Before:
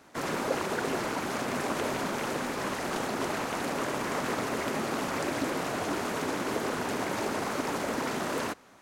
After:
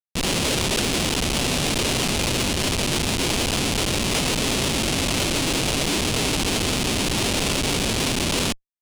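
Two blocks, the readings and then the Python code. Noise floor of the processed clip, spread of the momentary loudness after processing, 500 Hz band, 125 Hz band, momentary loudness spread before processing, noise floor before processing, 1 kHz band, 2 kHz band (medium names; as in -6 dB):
-28 dBFS, 1 LU, +4.5 dB, +15.0 dB, 1 LU, -36 dBFS, +2.5 dB, +7.5 dB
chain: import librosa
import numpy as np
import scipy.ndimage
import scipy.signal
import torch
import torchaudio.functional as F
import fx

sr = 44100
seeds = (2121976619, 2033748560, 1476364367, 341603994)

y = fx.self_delay(x, sr, depth_ms=0.1)
y = fx.schmitt(y, sr, flips_db=-28.5)
y = fx.band_shelf(y, sr, hz=5100.0, db=12.5, octaves=2.5)
y = y * 10.0 ** (7.5 / 20.0)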